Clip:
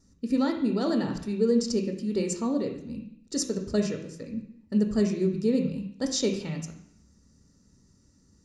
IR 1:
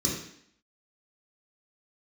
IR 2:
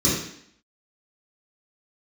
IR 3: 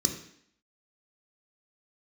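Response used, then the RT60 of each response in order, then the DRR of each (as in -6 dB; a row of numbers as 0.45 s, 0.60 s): 3; 0.65 s, 0.65 s, 0.65 s; -5.0 dB, -10.0 dB, 3.0 dB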